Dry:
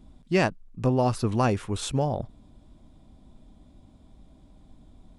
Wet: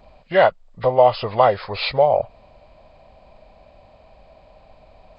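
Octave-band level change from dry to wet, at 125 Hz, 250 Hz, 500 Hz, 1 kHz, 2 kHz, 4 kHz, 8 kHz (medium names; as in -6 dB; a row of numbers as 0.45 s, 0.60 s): -5.0 dB, -7.5 dB, +11.5 dB, +11.5 dB, +7.5 dB, +9.0 dB, under -35 dB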